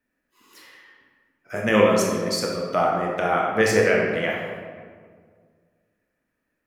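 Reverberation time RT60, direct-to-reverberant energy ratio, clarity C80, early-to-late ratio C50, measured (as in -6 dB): 1.8 s, -1.5 dB, 3.5 dB, 1.0 dB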